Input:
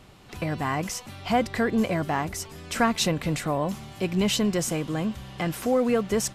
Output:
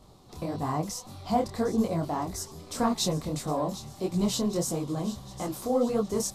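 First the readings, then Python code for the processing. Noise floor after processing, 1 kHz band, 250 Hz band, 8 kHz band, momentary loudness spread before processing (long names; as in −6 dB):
−52 dBFS, −3.0 dB, −3.0 dB, −2.5 dB, 10 LU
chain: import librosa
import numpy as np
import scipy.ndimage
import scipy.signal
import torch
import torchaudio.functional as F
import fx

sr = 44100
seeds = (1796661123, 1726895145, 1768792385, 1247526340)

y = fx.band_shelf(x, sr, hz=2100.0, db=-13.0, octaves=1.3)
y = fx.echo_wet_highpass(y, sr, ms=758, feedback_pct=55, hz=1700.0, wet_db=-13.0)
y = fx.detune_double(y, sr, cents=58)
y = y * librosa.db_to_amplitude(1.0)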